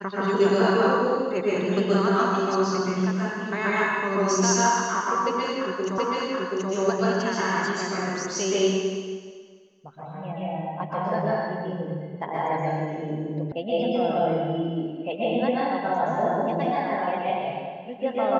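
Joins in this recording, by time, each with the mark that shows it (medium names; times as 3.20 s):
5.98 s: repeat of the last 0.73 s
13.52 s: sound stops dead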